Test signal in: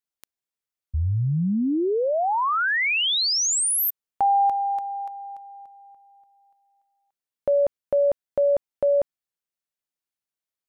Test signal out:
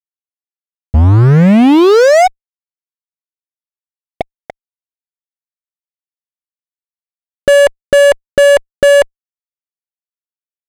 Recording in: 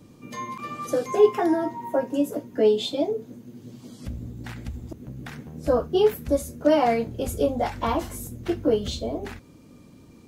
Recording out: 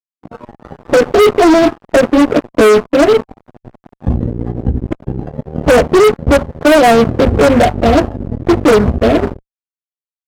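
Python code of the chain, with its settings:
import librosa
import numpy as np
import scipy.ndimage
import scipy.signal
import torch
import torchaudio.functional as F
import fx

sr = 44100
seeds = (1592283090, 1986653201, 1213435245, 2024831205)

y = scipy.signal.sosfilt(scipy.signal.ellip(8, 1.0, 70, 740.0, 'lowpass', fs=sr, output='sos'), x)
y = fx.fuzz(y, sr, gain_db=29.0, gate_db=-38.0)
y = fx.noise_reduce_blind(y, sr, reduce_db=8)
y = y * librosa.db_to_amplitude(8.5)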